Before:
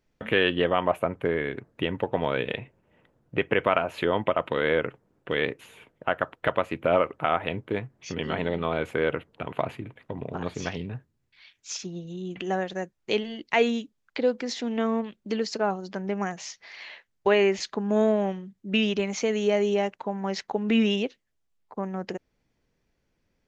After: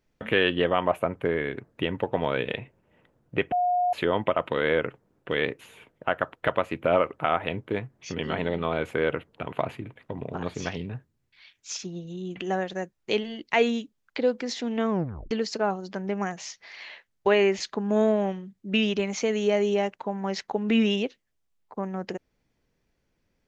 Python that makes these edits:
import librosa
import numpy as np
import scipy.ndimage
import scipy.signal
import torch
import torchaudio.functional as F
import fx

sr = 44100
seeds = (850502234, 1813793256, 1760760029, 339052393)

y = fx.edit(x, sr, fx.bleep(start_s=3.52, length_s=0.41, hz=717.0, db=-20.5),
    fx.tape_stop(start_s=14.9, length_s=0.41), tone=tone)